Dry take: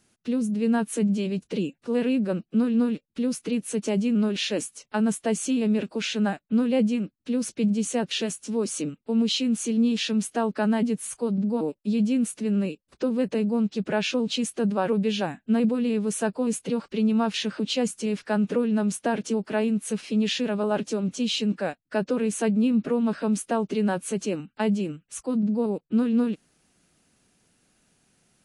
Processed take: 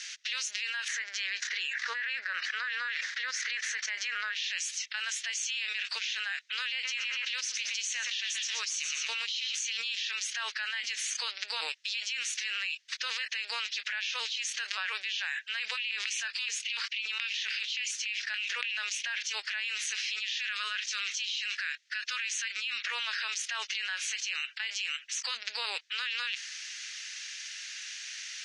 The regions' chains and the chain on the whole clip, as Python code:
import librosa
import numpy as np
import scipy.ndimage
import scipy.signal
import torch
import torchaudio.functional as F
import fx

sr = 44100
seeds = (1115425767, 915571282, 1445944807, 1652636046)

y = fx.chain(x, sr, fx.lowpass(hz=6000.0, slope=12),
    fx.high_shelf_res(hz=2200.0, db=-6.0, q=3.0),
    fx.sustainer(db_per_s=120.0), at=(0.88, 4.35))
y = fx.chain(y, sr, fx.echo_tape(ms=119, feedback_pct=45, wet_db=-10, lp_hz=4200.0, drive_db=17.0, wow_cents=31),
    fx.sustainer(db_per_s=59.0), at=(6.71, 9.55))
y = fx.chain(y, sr, fx.peak_eq(hz=150.0, db=-5.5, octaves=2.3),
    fx.filter_lfo_highpass(shape='square', hz=3.5, low_hz=260.0, high_hz=2500.0, q=3.4), at=(15.77, 19.1))
y = fx.chain(y, sr, fx.band_shelf(hz=660.0, db=-11.5, octaves=1.3),
    fx.notch(hz=810.0, q=5.3), at=(20.17, 22.82))
y = scipy.signal.sosfilt(scipy.signal.ellip(3, 1.0, 80, [1800.0, 6200.0], 'bandpass', fs=sr, output='sos'), y)
y = fx.env_flatten(y, sr, amount_pct=100)
y = y * 10.0 ** (-9.0 / 20.0)